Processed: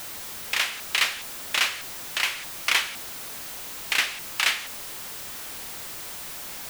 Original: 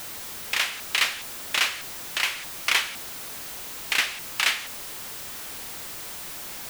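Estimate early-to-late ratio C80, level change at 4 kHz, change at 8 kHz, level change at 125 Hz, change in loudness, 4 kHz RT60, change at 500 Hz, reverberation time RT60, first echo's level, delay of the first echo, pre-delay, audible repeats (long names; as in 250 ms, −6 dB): no reverb audible, 0.0 dB, 0.0 dB, −0.5 dB, 0.0 dB, no reverb audible, −0.5 dB, no reverb audible, no echo audible, no echo audible, no reverb audible, no echo audible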